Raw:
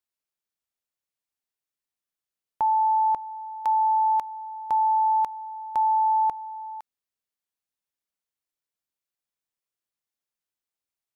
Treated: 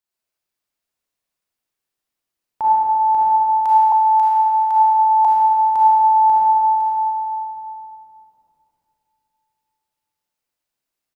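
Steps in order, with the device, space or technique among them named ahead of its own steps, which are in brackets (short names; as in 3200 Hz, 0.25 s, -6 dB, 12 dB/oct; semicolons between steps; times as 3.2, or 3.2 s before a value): cave (echo 0.346 s -14.5 dB; reverb RT60 3.2 s, pre-delay 31 ms, DRR -8 dB); 3.92–5.25 elliptic high-pass 690 Hz, stop band 40 dB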